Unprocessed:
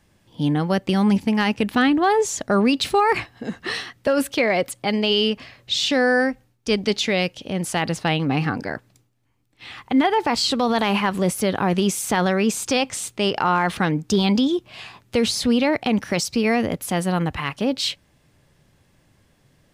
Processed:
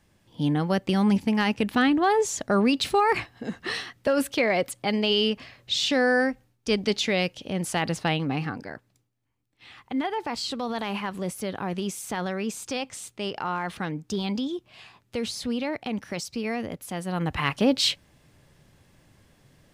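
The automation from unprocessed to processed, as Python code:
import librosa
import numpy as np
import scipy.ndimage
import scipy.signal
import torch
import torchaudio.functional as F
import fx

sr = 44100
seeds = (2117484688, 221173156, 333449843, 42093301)

y = fx.gain(x, sr, db=fx.line((8.06, -3.5), (8.67, -10.0), (17.04, -10.0), (17.44, 1.0)))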